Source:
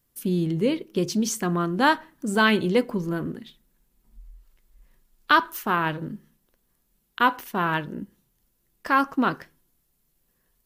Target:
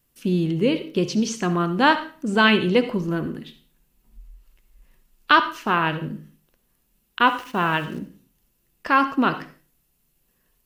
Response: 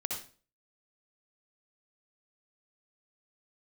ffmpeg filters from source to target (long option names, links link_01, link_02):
-filter_complex "[0:a]acrossover=split=6500[link_01][link_02];[link_02]acompressor=threshold=-59dB:ratio=4:attack=1:release=60[link_03];[link_01][link_03]amix=inputs=2:normalize=0,equalizer=frequency=2700:width_type=o:width=0.26:gain=6.5,asettb=1/sr,asplit=3[link_04][link_05][link_06];[link_04]atrim=end=7.274[link_07];[link_05]atrim=start=7.27:end=7.99,asetpts=PTS-STARTPTS,afade=type=in:duration=0.004:curve=qsin,afade=type=out:start_time=0.716:duration=0.004:curve=qsin,acrusher=bits=7:mix=0:aa=0.5[link_08];[link_06]atrim=start=7.986[link_09];[link_07][link_08]acrossfade=duration=0.004:curve1=hsin:curve2=qsin[link_10];[link_10][link_09]acrossfade=duration=0.004:curve1=qsin:curve2=hsin,asplit=2[link_11][link_12];[1:a]atrim=start_sample=2205,afade=type=out:start_time=0.35:duration=0.01,atrim=end_sample=15876[link_13];[link_12][link_13]afir=irnorm=-1:irlink=0,volume=-9dB[link_14];[link_11][link_14]amix=inputs=2:normalize=0"